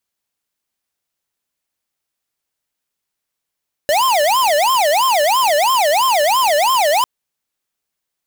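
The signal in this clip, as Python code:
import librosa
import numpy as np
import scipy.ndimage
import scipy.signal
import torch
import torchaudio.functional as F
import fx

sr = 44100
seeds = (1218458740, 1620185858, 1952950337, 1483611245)

y = fx.siren(sr, length_s=3.15, kind='wail', low_hz=579.0, high_hz=1060.0, per_s=3.0, wave='square', level_db=-14.0)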